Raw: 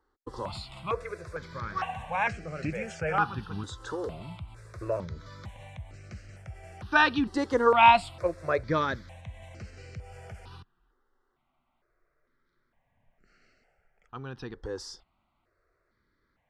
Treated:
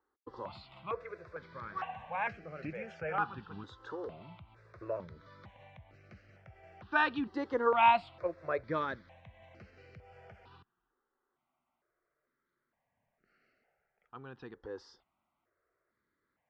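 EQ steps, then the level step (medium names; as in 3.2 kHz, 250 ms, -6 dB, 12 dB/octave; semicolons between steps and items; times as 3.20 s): high-pass 250 Hz 6 dB/octave; distance through air 250 m; -5.0 dB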